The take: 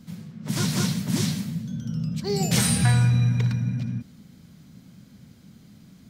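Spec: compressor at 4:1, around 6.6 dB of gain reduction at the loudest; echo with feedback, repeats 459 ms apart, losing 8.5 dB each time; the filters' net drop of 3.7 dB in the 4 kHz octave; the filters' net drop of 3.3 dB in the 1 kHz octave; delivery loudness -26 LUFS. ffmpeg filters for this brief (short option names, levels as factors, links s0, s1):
-af "equalizer=f=1000:t=o:g=-4.5,equalizer=f=4000:t=o:g=-4.5,acompressor=threshold=0.0631:ratio=4,aecho=1:1:459|918|1377|1836:0.376|0.143|0.0543|0.0206,volume=1.41"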